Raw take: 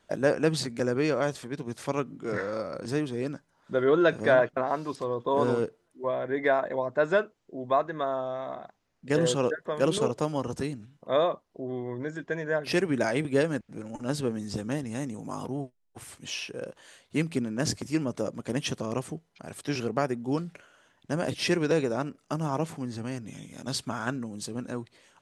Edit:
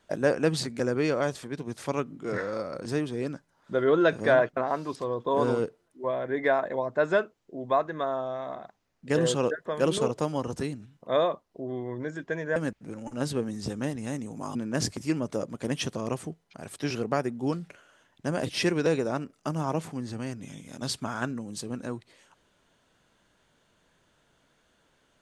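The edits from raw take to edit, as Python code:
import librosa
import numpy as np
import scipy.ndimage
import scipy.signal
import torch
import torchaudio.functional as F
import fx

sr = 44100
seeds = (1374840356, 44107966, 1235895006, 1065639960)

y = fx.edit(x, sr, fx.cut(start_s=12.56, length_s=0.88),
    fx.cut(start_s=15.43, length_s=1.97), tone=tone)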